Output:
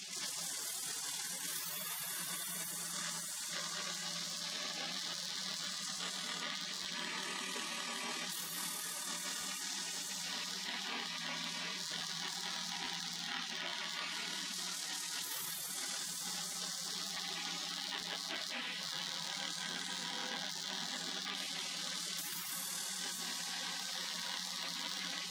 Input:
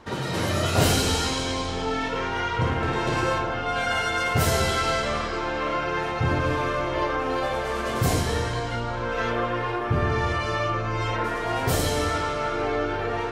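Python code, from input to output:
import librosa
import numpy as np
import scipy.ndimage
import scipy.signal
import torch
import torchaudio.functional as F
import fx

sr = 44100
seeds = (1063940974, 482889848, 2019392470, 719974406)

p1 = fx.rattle_buzz(x, sr, strikes_db=-32.0, level_db=-19.0)
p2 = scipy.signal.sosfilt(scipy.signal.butter(16, 190.0, 'highpass', fs=sr, output='sos'), p1)
p3 = fx.low_shelf(p2, sr, hz=310.0, db=-11.0)
p4 = fx.hum_notches(p3, sr, base_hz=50, count=6)
p5 = fx.stretch_grains(p4, sr, factor=1.9, grain_ms=52.0)
p6 = fx.echo_diffused(p5, sr, ms=917, feedback_pct=49, wet_db=-16.0)
p7 = fx.spec_gate(p6, sr, threshold_db=-25, keep='weak')
p8 = fx.high_shelf(p7, sr, hz=8300.0, db=-11.0)
p9 = p8 + fx.echo_single(p8, sr, ms=686, db=-17.5, dry=0)
p10 = fx.rider(p9, sr, range_db=10, speed_s=0.5)
p11 = fx.buffer_crackle(p10, sr, first_s=0.8, period_s=0.86, block=512, kind='repeat')
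p12 = fx.env_flatten(p11, sr, amount_pct=70)
y = p12 * librosa.db_to_amplitude(4.5)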